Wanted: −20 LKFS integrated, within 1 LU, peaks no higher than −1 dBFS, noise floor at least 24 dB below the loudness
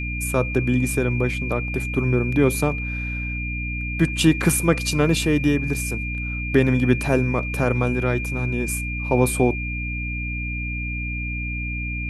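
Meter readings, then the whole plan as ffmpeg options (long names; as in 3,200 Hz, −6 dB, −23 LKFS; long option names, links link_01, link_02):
mains hum 60 Hz; hum harmonics up to 300 Hz; level of the hum −26 dBFS; interfering tone 2,400 Hz; level of the tone −29 dBFS; integrated loudness −22.5 LKFS; sample peak −4.0 dBFS; target loudness −20.0 LKFS
→ -af "bandreject=frequency=60:width_type=h:width=4,bandreject=frequency=120:width_type=h:width=4,bandreject=frequency=180:width_type=h:width=4,bandreject=frequency=240:width_type=h:width=4,bandreject=frequency=300:width_type=h:width=4"
-af "bandreject=frequency=2400:width=30"
-af "volume=2.5dB"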